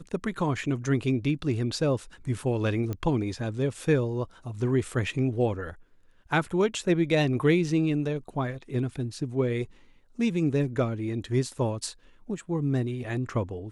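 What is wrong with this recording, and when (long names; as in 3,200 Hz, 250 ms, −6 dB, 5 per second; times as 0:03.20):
0:02.93: click −20 dBFS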